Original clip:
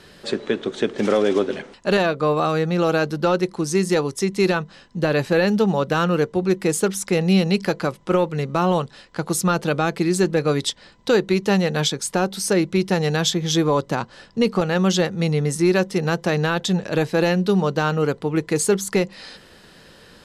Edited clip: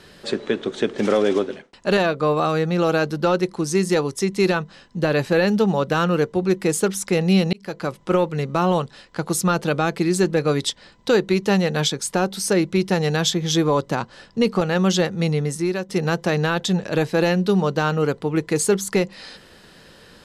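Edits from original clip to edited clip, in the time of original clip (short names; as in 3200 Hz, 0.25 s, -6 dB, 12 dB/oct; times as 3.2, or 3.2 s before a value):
1.34–1.73 fade out linear
7.53–7.98 fade in
15.28–15.89 fade out, to -10.5 dB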